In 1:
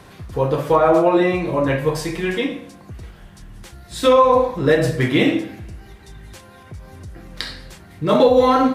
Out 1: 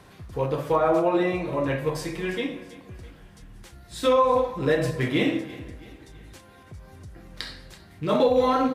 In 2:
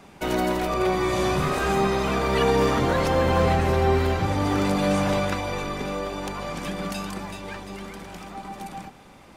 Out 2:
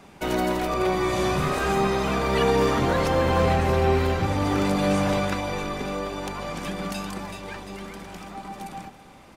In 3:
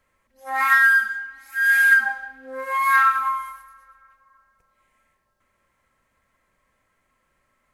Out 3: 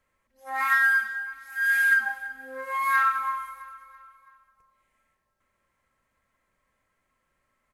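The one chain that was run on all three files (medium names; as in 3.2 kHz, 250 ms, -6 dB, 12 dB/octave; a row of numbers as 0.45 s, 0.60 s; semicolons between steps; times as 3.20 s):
rattle on loud lows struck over -20 dBFS, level -27 dBFS; feedback delay 331 ms, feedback 46%, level -18.5 dB; normalise loudness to -24 LUFS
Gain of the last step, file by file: -7.0 dB, -0.5 dB, -5.5 dB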